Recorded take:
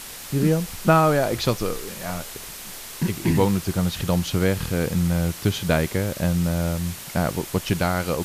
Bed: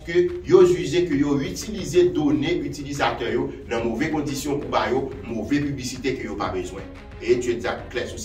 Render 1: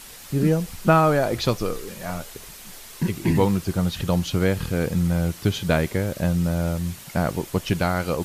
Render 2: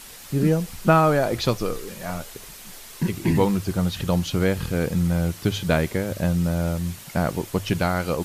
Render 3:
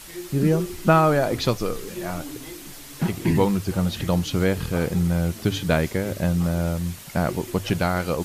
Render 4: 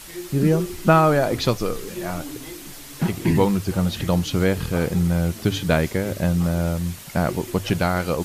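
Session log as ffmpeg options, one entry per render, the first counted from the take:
-af "afftdn=nr=6:nf=-38"
-af "bandreject=f=50:t=h:w=6,bandreject=f=100:t=h:w=6"
-filter_complex "[1:a]volume=-17.5dB[a];[0:a][a]amix=inputs=2:normalize=0"
-af "volume=1.5dB"

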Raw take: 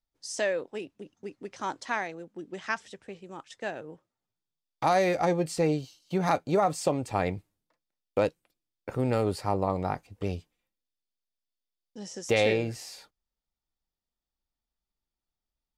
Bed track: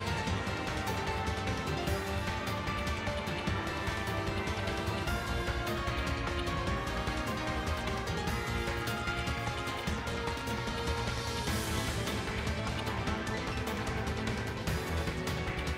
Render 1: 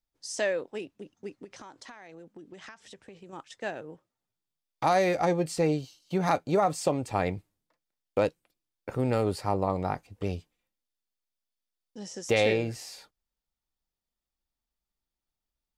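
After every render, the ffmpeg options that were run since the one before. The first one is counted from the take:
-filter_complex "[0:a]asettb=1/sr,asplit=3[a][b][c];[a]atrim=end=1.444[d];[b]atrim=start=1.44:end=3.33,asetpts=PTS-STARTPTS,afade=t=in:d=0.004:c=qsin,afade=t=out:st=1.886:d=0.004:c=qsin,acompressor=threshold=-42dB:ratio=16:attack=3.2:release=140:knee=1:detection=peak[e];[c]atrim=start=3.326[f];[d][e]acrossfade=d=0.004:c1=hsin:c2=qsin[g];[g][f]acrossfade=d=0.004:c1=qsin:c2=hsin"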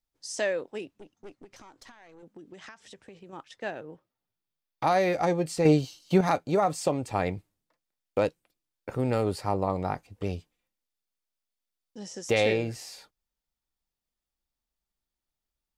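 -filter_complex "[0:a]asettb=1/sr,asplit=3[a][b][c];[a]atrim=end=0.994[d];[b]atrim=start=0.99:end=2.23,asetpts=PTS-STARTPTS,afade=t=in:d=0.004:c=qsin,afade=t=out:st=1.236:d=0.004:c=qsin,aeval=exprs='(tanh(100*val(0)+0.65)-tanh(0.65))/100':c=same[e];[c]atrim=start=2.226[f];[d][e]acrossfade=d=0.004:c1=hsin:c2=qsin[g];[g][f]acrossfade=d=0.004:c1=qsin:c2=hsin,asettb=1/sr,asplit=3[h][i][j];[h]atrim=end=3.194[k];[i]atrim=start=3.19:end=5.15,asetpts=PTS-STARTPTS,afade=t=in:d=0.004:c=qsin,afade=t=out:st=1.956:d=0.004:c=qsin,equalizer=f=7.6k:w=1.6:g=-7[l];[j]atrim=start=5.146[m];[k][l]acrossfade=d=0.004:c1=hsin:c2=qsin[n];[n][m]acrossfade=d=0.004:c1=qsin:c2=hsin,asettb=1/sr,asplit=3[o][p][q];[o]atrim=end=5.654[r];[p]atrim=start=5.65:end=6.21,asetpts=PTS-STARTPTS,afade=t=in:d=0.004:c=qsin,afade=t=out:st=0.556:d=0.004:c=qsin,acontrast=87[s];[q]atrim=start=6.206[t];[r][s]acrossfade=d=0.004:c1=hsin:c2=qsin[u];[u][t]acrossfade=d=0.004:c1=qsin:c2=hsin"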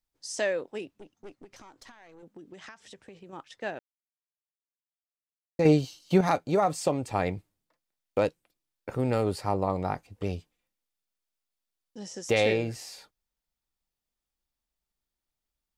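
-filter_complex "[0:a]asplit=3[a][b][c];[a]atrim=end=3.79,asetpts=PTS-STARTPTS,afade=t=out:st=3.786:d=0.004:c=hsin[d];[b]atrim=start=3.79:end=5.59,asetpts=PTS-STARTPTS,volume=0[e];[c]atrim=start=5.59,asetpts=PTS-STARTPTS,afade=t=in:d=0.004:c=hsin[f];[d][e][f]concat=n=3:v=0:a=1"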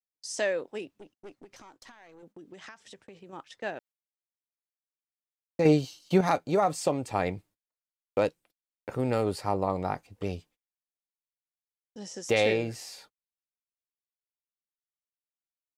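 -af "agate=range=-28dB:threshold=-55dB:ratio=16:detection=peak,lowshelf=f=120:g=-5"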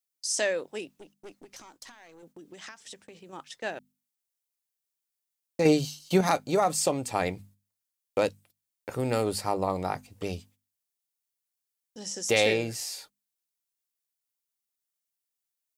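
-af "highshelf=f=4.3k:g=12,bandreject=f=50:t=h:w=6,bandreject=f=100:t=h:w=6,bandreject=f=150:t=h:w=6,bandreject=f=200:t=h:w=6,bandreject=f=250:t=h:w=6"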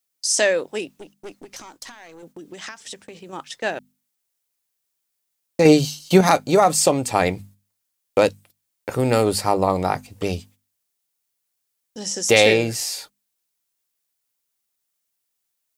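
-af "volume=9dB,alimiter=limit=-2dB:level=0:latency=1"

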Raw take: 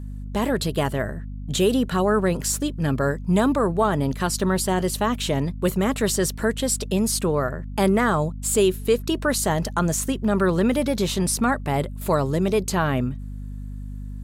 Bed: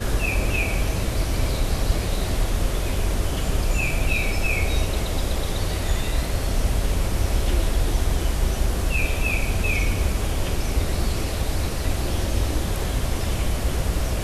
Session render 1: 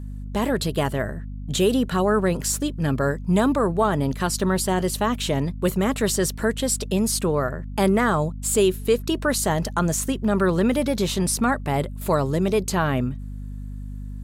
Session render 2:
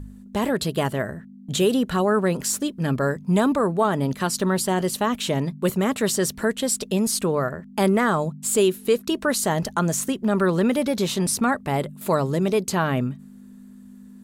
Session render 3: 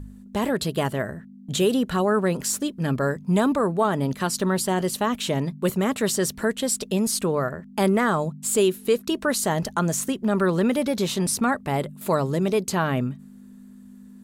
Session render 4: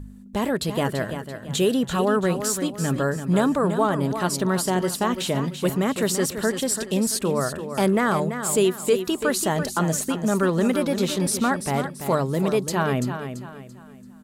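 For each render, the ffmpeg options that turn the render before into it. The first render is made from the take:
-af anull
-af "bandreject=f=50:t=h:w=4,bandreject=f=100:t=h:w=4,bandreject=f=150:t=h:w=4"
-af "volume=-1dB"
-af "aecho=1:1:337|674|1011|1348:0.355|0.128|0.046|0.0166"

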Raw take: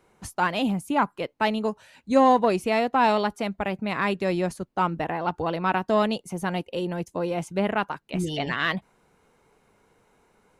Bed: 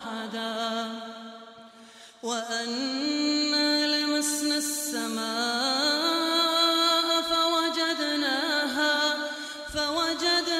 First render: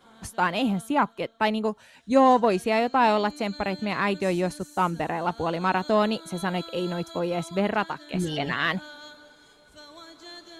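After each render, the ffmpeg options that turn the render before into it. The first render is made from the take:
-filter_complex "[1:a]volume=-19.5dB[a];[0:a][a]amix=inputs=2:normalize=0"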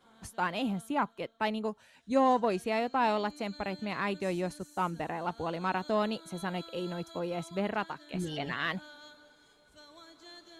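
-af "volume=-7.5dB"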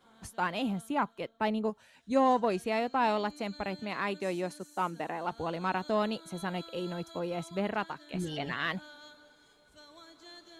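-filter_complex "[0:a]asettb=1/sr,asplit=3[a][b][c];[a]atrim=end=1.294[d];[b]atrim=start=1.29:end=1.7,asetpts=PTS-STARTPTS,afade=t=in:d=0.004:c=qsin,afade=t=out:st=0.406:d=0.004:c=qsin,tiltshelf=f=970:g=3.5[e];[c]atrim=start=1.696[f];[d][e]acrossfade=d=0.004:c1=hsin:c2=qsin[g];[g][f]acrossfade=d=0.004:c1=qsin:c2=hsin,asettb=1/sr,asplit=3[h][i][j];[h]atrim=end=3.824[k];[i]atrim=start=3.82:end=5.32,asetpts=PTS-STARTPTS,afade=t=in:d=0.004:c=qsin,afade=t=out:st=1.496:d=0.004:c=qsin,highpass=200[l];[j]atrim=start=5.316[m];[k][l]acrossfade=d=0.004:c1=hsin:c2=qsin[n];[n][m]acrossfade=d=0.004:c1=qsin:c2=hsin"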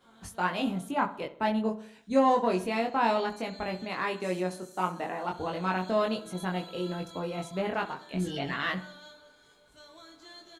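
-filter_complex "[0:a]asplit=2[a][b];[b]adelay=22,volume=-2.5dB[c];[a][c]amix=inputs=2:normalize=0,asplit=2[d][e];[e]adelay=65,lowpass=f=2k:p=1,volume=-13.5dB,asplit=2[f][g];[g]adelay=65,lowpass=f=2k:p=1,volume=0.54,asplit=2[h][i];[i]adelay=65,lowpass=f=2k:p=1,volume=0.54,asplit=2[j][k];[k]adelay=65,lowpass=f=2k:p=1,volume=0.54,asplit=2[l][m];[m]adelay=65,lowpass=f=2k:p=1,volume=0.54[n];[d][f][h][j][l][n]amix=inputs=6:normalize=0"

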